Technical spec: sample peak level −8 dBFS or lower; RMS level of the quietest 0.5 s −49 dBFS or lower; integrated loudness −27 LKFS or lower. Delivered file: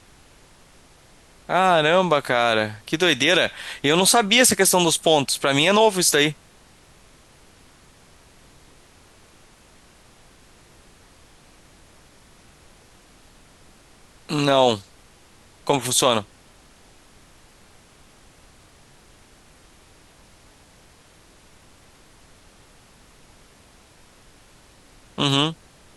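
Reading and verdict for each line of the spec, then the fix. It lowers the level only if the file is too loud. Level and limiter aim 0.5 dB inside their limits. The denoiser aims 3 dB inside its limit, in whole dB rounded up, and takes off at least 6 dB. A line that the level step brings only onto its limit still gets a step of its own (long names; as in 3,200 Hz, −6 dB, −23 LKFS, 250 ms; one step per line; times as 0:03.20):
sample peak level −5.0 dBFS: out of spec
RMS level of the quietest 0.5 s −52 dBFS: in spec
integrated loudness −18.5 LKFS: out of spec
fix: level −9 dB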